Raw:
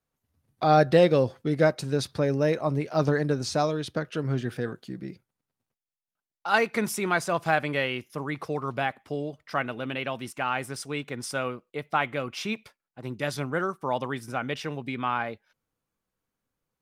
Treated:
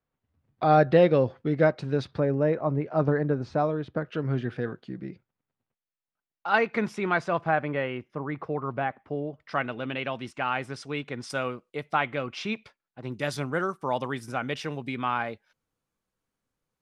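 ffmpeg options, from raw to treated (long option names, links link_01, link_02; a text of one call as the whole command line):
ffmpeg -i in.wav -af "asetnsamples=nb_out_samples=441:pad=0,asendcmd='2.2 lowpass f 1600;4.06 lowpass f 3000;7.41 lowpass f 1700;9.4 lowpass f 4600;11.3 lowpass f 9000;11.95 lowpass f 4800;13.12 lowpass f 11000',lowpass=2800" out.wav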